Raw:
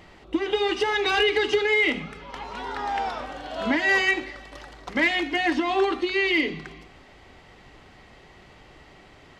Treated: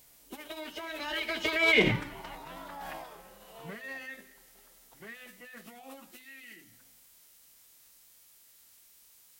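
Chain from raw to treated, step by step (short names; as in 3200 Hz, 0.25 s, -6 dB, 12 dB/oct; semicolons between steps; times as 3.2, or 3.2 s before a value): Doppler pass-by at 1.9, 19 m/s, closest 1.3 m; added noise blue -67 dBFS; formant-preserving pitch shift -5.5 st; gain +8.5 dB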